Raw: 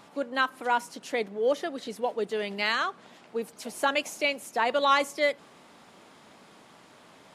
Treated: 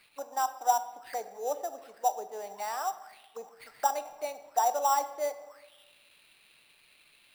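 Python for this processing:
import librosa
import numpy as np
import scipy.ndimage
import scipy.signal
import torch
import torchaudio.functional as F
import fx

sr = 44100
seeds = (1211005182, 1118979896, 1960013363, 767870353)

y = fx.auto_wah(x, sr, base_hz=780.0, top_hz=4800.0, q=9.2, full_db=-29.5, direction='down')
y = fx.sample_hold(y, sr, seeds[0], rate_hz=6600.0, jitter_pct=0)
y = fx.room_shoebox(y, sr, seeds[1], volume_m3=640.0, walls='mixed', distance_m=0.44)
y = y * librosa.db_to_amplitude(8.5)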